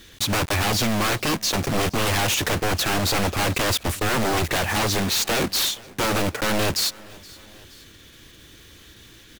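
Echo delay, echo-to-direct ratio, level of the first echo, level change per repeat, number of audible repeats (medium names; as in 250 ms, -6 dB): 472 ms, -21.5 dB, -23.0 dB, -4.5 dB, 2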